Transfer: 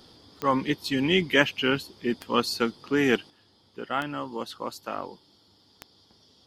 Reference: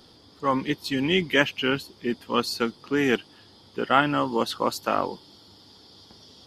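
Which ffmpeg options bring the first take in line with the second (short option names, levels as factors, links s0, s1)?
-af "adeclick=t=4,asetnsamples=n=441:p=0,asendcmd='3.3 volume volume 9dB',volume=1"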